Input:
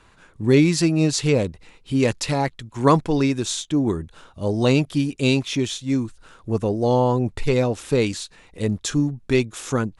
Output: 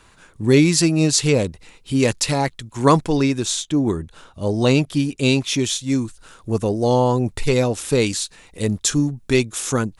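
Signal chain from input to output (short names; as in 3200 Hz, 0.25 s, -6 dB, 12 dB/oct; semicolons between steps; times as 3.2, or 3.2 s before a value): high shelf 5400 Hz +9.5 dB, from 3.17 s +4 dB, from 5.48 s +11.5 dB; gain +1.5 dB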